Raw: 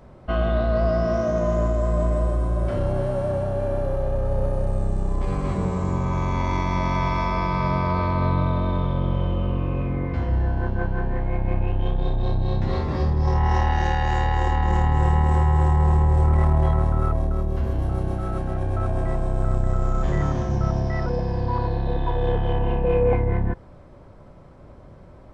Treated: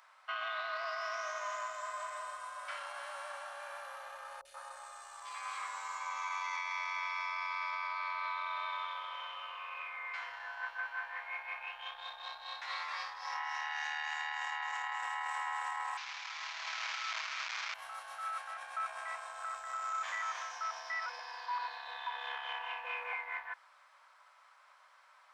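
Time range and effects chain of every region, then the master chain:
0:04.41–0:06.57: double-tracking delay 13 ms −10.5 dB + three-band delay without the direct sound lows, highs, mids 40/130 ms, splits 460/2,400 Hz
0:15.97–0:17.74: linear delta modulator 32 kbit/s, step −20.5 dBFS + compressor whose output falls as the input rises −22 dBFS, ratio −0.5
whole clip: inverse Chebyshev high-pass filter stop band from 330 Hz, stop band 60 dB; dynamic equaliser 2,300 Hz, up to +6 dB, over −55 dBFS, Q 5.1; brickwall limiter −29 dBFS

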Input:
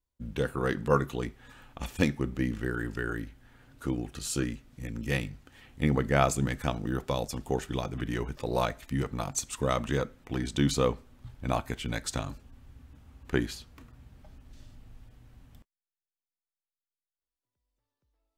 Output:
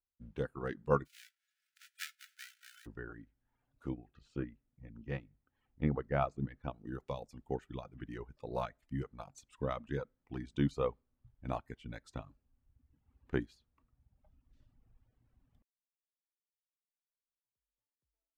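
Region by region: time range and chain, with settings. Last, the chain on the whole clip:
0:01.05–0:02.85: spectral envelope flattened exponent 0.1 + linear-phase brick-wall high-pass 1,300 Hz + double-tracking delay 20 ms −10.5 dB
0:03.94–0:06.79: low-pass filter 4,600 Hz + high-shelf EQ 2,300 Hz −6.5 dB
whole clip: low-pass filter 1,700 Hz 6 dB per octave; reverb reduction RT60 1.5 s; expander for the loud parts 1.5 to 1, over −41 dBFS; level −3.5 dB

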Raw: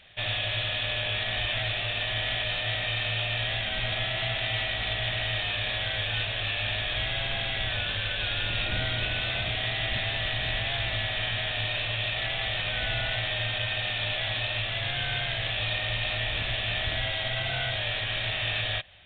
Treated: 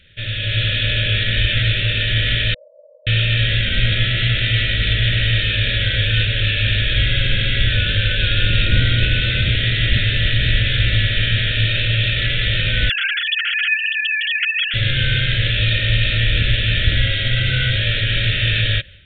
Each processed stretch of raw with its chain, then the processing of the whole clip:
0:02.54–0:03.07: gain into a clipping stage and back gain 35.5 dB + linear-phase brick-wall band-pass 500–1,100 Hz
0:12.89–0:14.74: three sine waves on the formant tracks + elliptic high-pass filter 1,400 Hz, stop band 60 dB + comb filter 6.4 ms, depth 73%
whole clip: elliptic band-stop filter 550–1,400 Hz, stop band 40 dB; low-shelf EQ 210 Hz +9 dB; automatic gain control gain up to 8 dB; level +2.5 dB

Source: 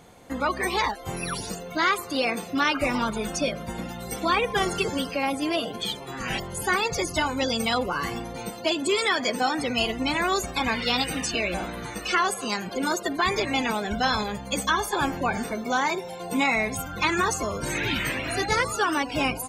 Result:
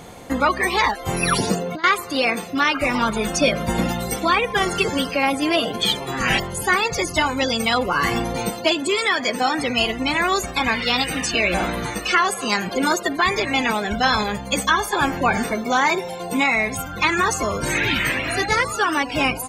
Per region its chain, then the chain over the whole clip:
0:01.38–0:01.84: high-pass filter 160 Hz + spectral tilt −2 dB per octave + compressor whose output falls as the input rises −29 dBFS, ratio −0.5
whole clip: notch filter 1,500 Hz, Q 26; dynamic equaliser 1,800 Hz, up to +4 dB, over −38 dBFS, Q 0.98; speech leveller 0.5 s; level +4 dB

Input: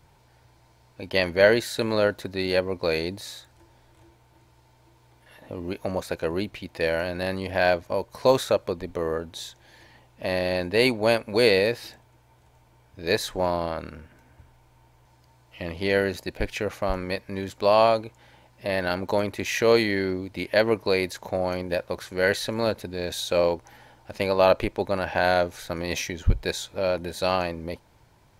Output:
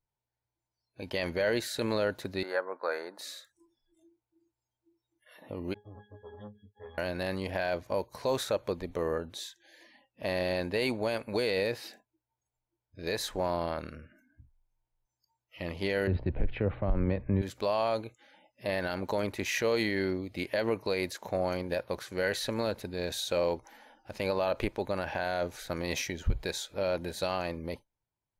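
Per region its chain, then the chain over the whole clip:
0:02.43–0:03.19: high-pass filter 620 Hz + high shelf with overshoot 2,000 Hz −10.5 dB, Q 3
0:05.74–0:06.98: lower of the sound and its delayed copy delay 9.6 ms + resonances in every octave G#, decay 0.2 s + saturating transformer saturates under 530 Hz
0:16.07–0:17.42: low-pass filter 3,500 Hz 24 dB per octave + spectral tilt −4 dB per octave + multiband upward and downward compressor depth 40%
whole clip: noise reduction from a noise print of the clip's start 29 dB; brickwall limiter −15 dBFS; level −4 dB

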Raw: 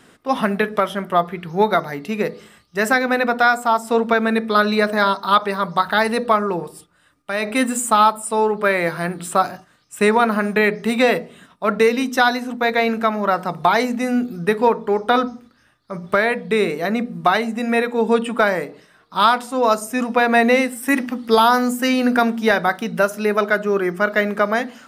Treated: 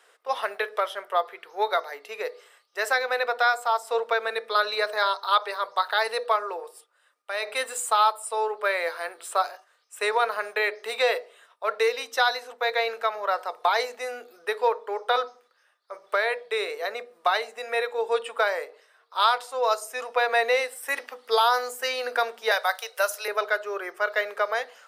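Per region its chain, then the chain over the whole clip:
0:22.51–0:23.28: inverse Chebyshev high-pass filter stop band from 240 Hz + high-shelf EQ 4,700 Hz +11 dB
whole clip: Chebyshev high-pass filter 460 Hz, order 4; dynamic equaliser 4,200 Hz, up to +6 dB, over −41 dBFS, Q 2; level −6.5 dB

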